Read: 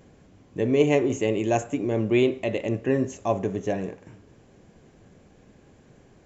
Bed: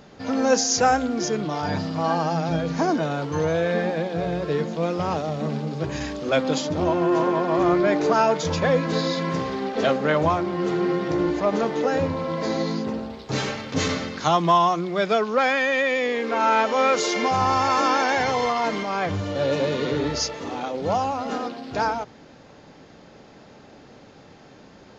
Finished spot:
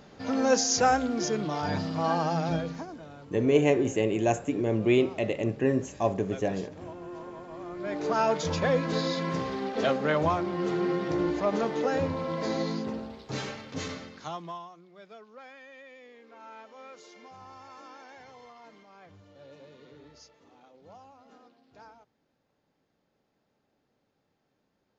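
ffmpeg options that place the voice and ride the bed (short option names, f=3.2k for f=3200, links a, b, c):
-filter_complex "[0:a]adelay=2750,volume=-2dB[a];[1:a]volume=12dB,afade=t=out:st=2.52:d=0.34:silence=0.141254,afade=t=in:st=7.74:d=0.57:silence=0.158489,afade=t=out:st=12.62:d=2.07:silence=0.0707946[b];[a][b]amix=inputs=2:normalize=0"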